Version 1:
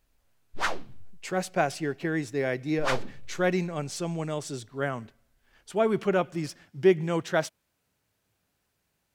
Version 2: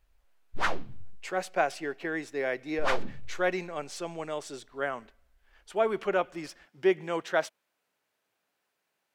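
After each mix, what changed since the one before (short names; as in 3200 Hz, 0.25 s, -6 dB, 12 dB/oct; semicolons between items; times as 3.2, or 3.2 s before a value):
speech: add HPF 450 Hz 12 dB/oct; master: add tone controls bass +4 dB, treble -6 dB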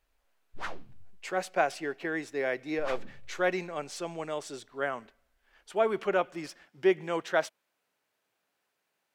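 background -9.5 dB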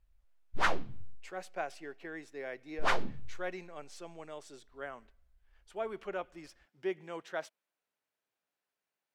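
speech -11.0 dB; background +9.0 dB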